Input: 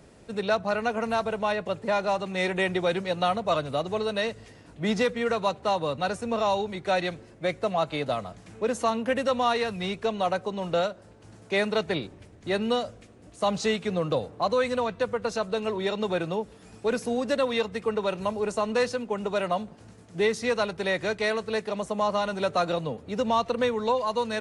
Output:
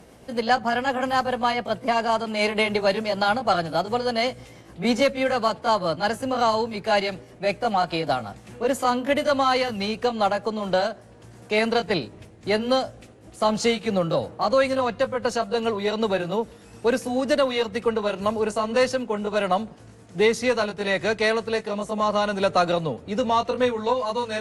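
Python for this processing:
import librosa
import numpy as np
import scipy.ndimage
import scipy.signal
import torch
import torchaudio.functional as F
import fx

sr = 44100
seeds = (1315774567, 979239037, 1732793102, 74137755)

y = fx.pitch_glide(x, sr, semitones=2.5, runs='ending unshifted')
y = fx.cheby_harmonics(y, sr, harmonics=(4,), levels_db=(-31,), full_scale_db=-12.0)
y = F.gain(torch.from_numpy(y), 5.0).numpy()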